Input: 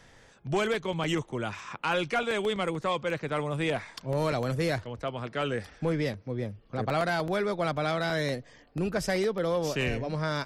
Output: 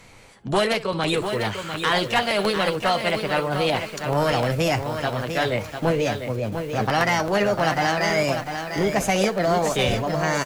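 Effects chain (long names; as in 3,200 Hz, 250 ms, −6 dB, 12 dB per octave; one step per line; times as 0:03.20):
ambience of single reflections 10 ms −11.5 dB, 63 ms −17.5 dB
formants moved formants +4 semitones
feedback echo at a low word length 698 ms, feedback 35%, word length 8 bits, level −7 dB
level +6.5 dB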